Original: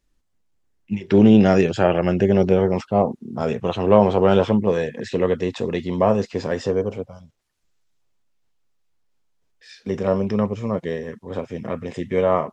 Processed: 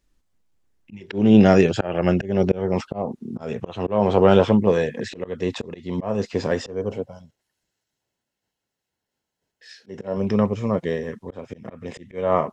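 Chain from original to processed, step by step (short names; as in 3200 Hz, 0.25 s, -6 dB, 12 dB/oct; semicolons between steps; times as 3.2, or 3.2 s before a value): auto swell 0.275 s; 6.92–10.17 notch comb 1200 Hz; gain +1.5 dB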